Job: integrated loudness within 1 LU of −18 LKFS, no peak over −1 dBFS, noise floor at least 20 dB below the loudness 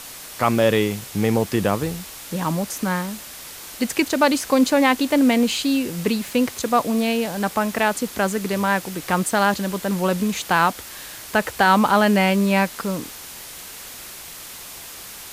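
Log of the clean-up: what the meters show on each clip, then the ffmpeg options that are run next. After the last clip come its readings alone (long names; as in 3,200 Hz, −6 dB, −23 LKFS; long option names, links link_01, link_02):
background noise floor −38 dBFS; target noise floor −41 dBFS; integrated loudness −20.5 LKFS; sample peak −4.0 dBFS; target loudness −18.0 LKFS
→ -af "afftdn=noise_reduction=6:noise_floor=-38"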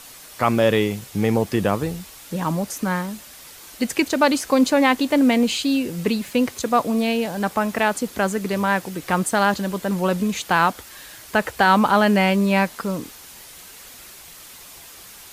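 background noise floor −43 dBFS; integrated loudness −20.5 LKFS; sample peak −4.0 dBFS; target loudness −18.0 LKFS
→ -af "volume=2.5dB"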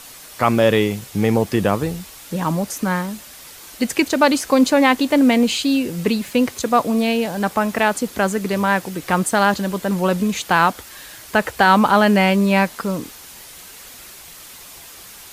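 integrated loudness −18.0 LKFS; sample peak −1.5 dBFS; background noise floor −40 dBFS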